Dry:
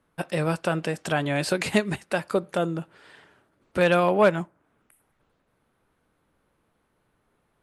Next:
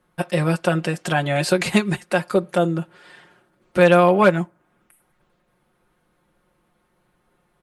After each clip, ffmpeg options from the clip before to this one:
ffmpeg -i in.wav -af "aecho=1:1:5.6:0.65,volume=3dB" out.wav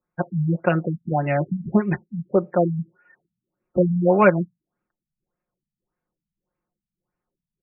ffmpeg -i in.wav -af "afftdn=noise_reduction=18:noise_floor=-36,afftfilt=real='re*lt(b*sr/1024,210*pow(2900/210,0.5+0.5*sin(2*PI*1.7*pts/sr)))':imag='im*lt(b*sr/1024,210*pow(2900/210,0.5+0.5*sin(2*PI*1.7*pts/sr)))':win_size=1024:overlap=0.75" out.wav

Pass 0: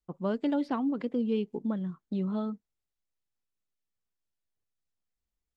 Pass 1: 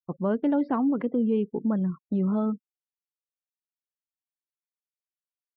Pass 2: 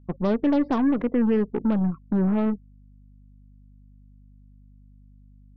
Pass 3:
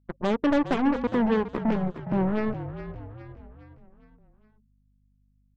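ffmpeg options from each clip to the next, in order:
ffmpeg -i in.wav -filter_complex "[0:a]afftfilt=real='re*gte(hypot(re,im),0.00282)':imag='im*gte(hypot(re,im),0.00282)':win_size=1024:overlap=0.75,lowpass=1700,asplit=2[link_01][link_02];[link_02]alimiter=level_in=4.5dB:limit=-24dB:level=0:latency=1:release=40,volume=-4.5dB,volume=3dB[link_03];[link_01][link_03]amix=inputs=2:normalize=0" out.wav
ffmpeg -i in.wav -af "lowpass=frequency=1400:poles=1,aeval=exprs='0.15*(cos(1*acos(clip(val(0)/0.15,-1,1)))-cos(1*PI/2))+0.0106*(cos(8*acos(clip(val(0)/0.15,-1,1)))-cos(8*PI/2))':channel_layout=same,aeval=exprs='val(0)+0.00224*(sin(2*PI*50*n/s)+sin(2*PI*2*50*n/s)/2+sin(2*PI*3*50*n/s)/3+sin(2*PI*4*50*n/s)/4+sin(2*PI*5*50*n/s)/5)':channel_layout=same,volume=3dB" out.wav
ffmpeg -i in.wav -filter_complex "[0:a]aeval=exprs='0.224*(cos(1*acos(clip(val(0)/0.224,-1,1)))-cos(1*PI/2))+0.0631*(cos(3*acos(clip(val(0)/0.224,-1,1)))-cos(3*PI/2))+0.00178*(cos(5*acos(clip(val(0)/0.224,-1,1)))-cos(5*PI/2))+0.0112*(cos(7*acos(clip(val(0)/0.224,-1,1)))-cos(7*PI/2))':channel_layout=same,asplit=2[link_01][link_02];[link_02]asplit=5[link_03][link_04][link_05][link_06][link_07];[link_03]adelay=412,afreqshift=-44,volume=-11dB[link_08];[link_04]adelay=824,afreqshift=-88,volume=-17dB[link_09];[link_05]adelay=1236,afreqshift=-132,volume=-23dB[link_10];[link_06]adelay=1648,afreqshift=-176,volume=-29.1dB[link_11];[link_07]adelay=2060,afreqshift=-220,volume=-35.1dB[link_12];[link_08][link_09][link_10][link_11][link_12]amix=inputs=5:normalize=0[link_13];[link_01][link_13]amix=inputs=2:normalize=0,volume=2dB" out.wav

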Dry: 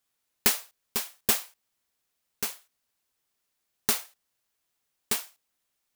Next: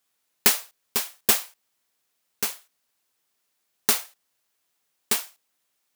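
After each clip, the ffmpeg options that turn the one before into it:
ffmpeg -i in.wav -af "highpass=frequency=170:poles=1,volume=4.5dB" out.wav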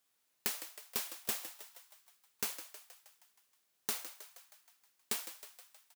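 ffmpeg -i in.wav -filter_complex "[0:a]acompressor=threshold=-27dB:ratio=10,asoftclip=type=tanh:threshold=-19.5dB,asplit=8[link_01][link_02][link_03][link_04][link_05][link_06][link_07][link_08];[link_02]adelay=158,afreqshift=98,volume=-12dB[link_09];[link_03]adelay=316,afreqshift=196,volume=-16.6dB[link_10];[link_04]adelay=474,afreqshift=294,volume=-21.2dB[link_11];[link_05]adelay=632,afreqshift=392,volume=-25.7dB[link_12];[link_06]adelay=790,afreqshift=490,volume=-30.3dB[link_13];[link_07]adelay=948,afreqshift=588,volume=-34.9dB[link_14];[link_08]adelay=1106,afreqshift=686,volume=-39.5dB[link_15];[link_01][link_09][link_10][link_11][link_12][link_13][link_14][link_15]amix=inputs=8:normalize=0,volume=-3.5dB" out.wav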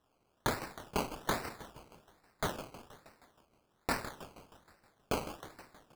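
ffmpeg -i in.wav -af "flanger=delay=19:depth=7.9:speed=1.6,acrusher=samples=19:mix=1:aa=0.000001:lfo=1:lforange=11.4:lforate=1.2,volume=7dB" out.wav

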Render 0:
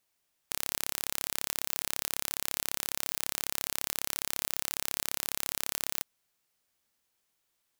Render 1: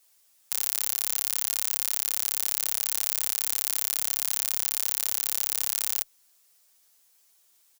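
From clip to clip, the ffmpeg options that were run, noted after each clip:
ffmpeg -i in.wav -filter_complex "[0:a]bass=frequency=250:gain=-14,treble=frequency=4000:gain=9,alimiter=level_in=4.5dB:limit=-1dB:release=50:level=0:latency=1,asplit=2[link_01][link_02];[link_02]adelay=7.9,afreqshift=1.7[link_03];[link_01][link_03]amix=inputs=2:normalize=1,volume=5.5dB" out.wav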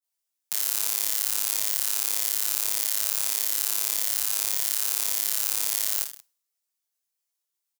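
ffmpeg -i in.wav -filter_complex "[0:a]agate=range=-33dB:threshold=-49dB:ratio=3:detection=peak,asplit=2[link_01][link_02];[link_02]aecho=0:1:20|46|79.8|123.7|180.9:0.631|0.398|0.251|0.158|0.1[link_03];[link_01][link_03]amix=inputs=2:normalize=0" out.wav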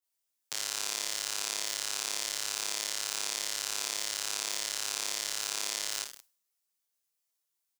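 ffmpeg -i in.wav -filter_complex "[0:a]acrossover=split=7500[link_01][link_02];[link_02]acompressor=threshold=-42dB:ratio=4:attack=1:release=60[link_03];[link_01][link_03]amix=inputs=2:normalize=0" out.wav

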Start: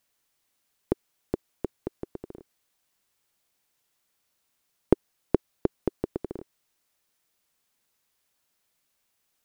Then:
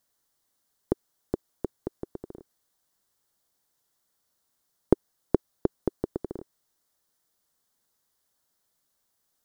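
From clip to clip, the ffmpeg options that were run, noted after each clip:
ffmpeg -i in.wav -af "equalizer=frequency=2500:width_type=o:width=0.55:gain=-12.5" out.wav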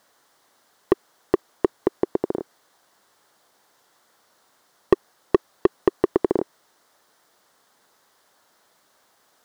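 ffmpeg -i in.wav -filter_complex "[0:a]asplit=2[link_01][link_02];[link_02]highpass=frequency=720:poles=1,volume=32dB,asoftclip=type=tanh:threshold=-1.5dB[link_03];[link_01][link_03]amix=inputs=2:normalize=0,lowpass=frequency=1300:poles=1,volume=-6dB" out.wav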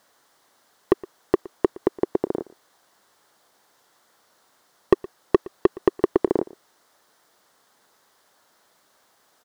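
ffmpeg -i in.wav -filter_complex "[0:a]asplit=2[link_01][link_02];[link_02]adelay=116.6,volume=-21dB,highshelf=frequency=4000:gain=-2.62[link_03];[link_01][link_03]amix=inputs=2:normalize=0" out.wav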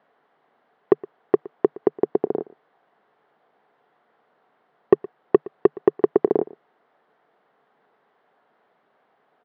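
ffmpeg -i in.wav -af "highpass=130,equalizer=frequency=150:width_type=q:width=4:gain=7,equalizer=frequency=230:width_type=q:width=4:gain=5,equalizer=frequency=430:width_type=q:width=4:gain=8,equalizer=frequency=730:width_type=q:width=4:gain=7,lowpass=frequency=2700:width=0.5412,lowpass=frequency=2700:width=1.3066,volume=-3dB" out.wav

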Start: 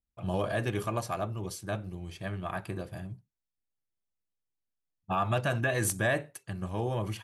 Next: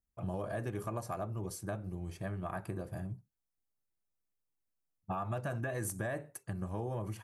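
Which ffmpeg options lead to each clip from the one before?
ffmpeg -i in.wav -af "equalizer=frequency=3300:width_type=o:width=1.4:gain=-11.5,acompressor=threshold=-36dB:ratio=4,volume=1dB" out.wav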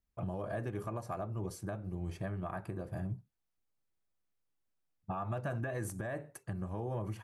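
ffmpeg -i in.wav -af "highshelf=frequency=4800:gain=-8.5,alimiter=level_in=7.5dB:limit=-24dB:level=0:latency=1:release=442,volume=-7.5dB,volume=3.5dB" out.wav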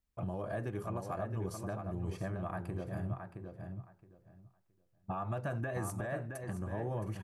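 ffmpeg -i in.wav -filter_complex "[0:a]asplit=2[link_01][link_02];[link_02]adelay=669,lowpass=frequency=3600:poles=1,volume=-6dB,asplit=2[link_03][link_04];[link_04]adelay=669,lowpass=frequency=3600:poles=1,volume=0.19,asplit=2[link_05][link_06];[link_06]adelay=669,lowpass=frequency=3600:poles=1,volume=0.19[link_07];[link_01][link_03][link_05][link_07]amix=inputs=4:normalize=0" out.wav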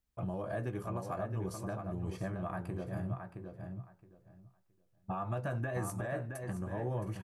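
ffmpeg -i in.wav -filter_complex "[0:a]asplit=2[link_01][link_02];[link_02]adelay=16,volume=-11dB[link_03];[link_01][link_03]amix=inputs=2:normalize=0" out.wav

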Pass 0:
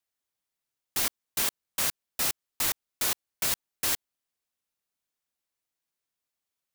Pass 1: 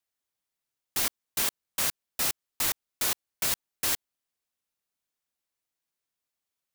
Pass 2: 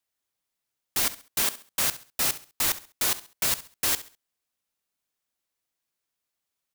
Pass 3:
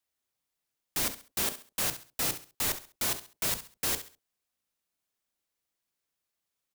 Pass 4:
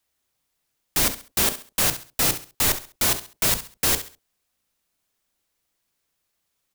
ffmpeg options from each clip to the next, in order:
ffmpeg -i in.wav -af anull out.wav
ffmpeg -i in.wav -af "aecho=1:1:67|134|201:0.168|0.0504|0.0151,volume=2.5dB" out.wav
ffmpeg -i in.wav -filter_complex "[0:a]acrossover=split=690[link_01][link_02];[link_01]asplit=2[link_03][link_04];[link_04]adelay=35,volume=-3.5dB[link_05];[link_03][link_05]amix=inputs=2:normalize=0[link_06];[link_02]volume=25dB,asoftclip=hard,volume=-25dB[link_07];[link_06][link_07]amix=inputs=2:normalize=0,volume=-1.5dB" out.wav
ffmpeg -i in.wav -af "lowshelf=frequency=88:gain=6,volume=9dB" out.wav

